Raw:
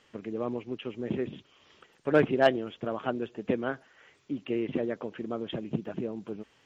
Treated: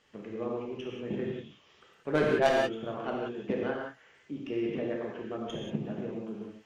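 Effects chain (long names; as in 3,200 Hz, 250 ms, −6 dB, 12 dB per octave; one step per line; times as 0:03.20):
stylus tracing distortion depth 0.11 ms
reverb whose tail is shaped and stops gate 210 ms flat, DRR −2.5 dB
level −5.5 dB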